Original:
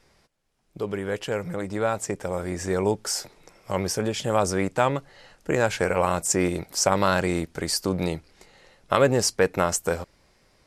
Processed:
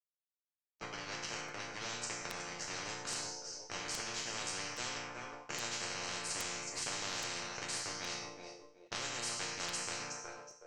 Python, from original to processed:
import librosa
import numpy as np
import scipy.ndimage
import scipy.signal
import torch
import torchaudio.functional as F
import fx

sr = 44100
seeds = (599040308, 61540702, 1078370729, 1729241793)

y = scipy.signal.sosfilt(scipy.signal.butter(4, 440.0, 'highpass', fs=sr, output='sos'), x)
y = np.sign(y) * np.maximum(np.abs(y) - 10.0 ** (-34.5 / 20.0), 0.0)
y = fx.ladder_lowpass(y, sr, hz=6300.0, resonance_pct=75)
y = fx.tilt_eq(y, sr, slope=-3.0)
y = fx.notch(y, sr, hz=3500.0, q=6.5)
y = fx.resonator_bank(y, sr, root=46, chord='major', decay_s=0.58)
y = fx.echo_feedback(y, sr, ms=369, feedback_pct=16, wet_db=-19.0)
y = fx.buffer_crackle(y, sr, first_s=0.66, period_s=0.82, block=256, kind='repeat')
y = fx.spectral_comp(y, sr, ratio=10.0)
y = y * librosa.db_to_amplitude(14.5)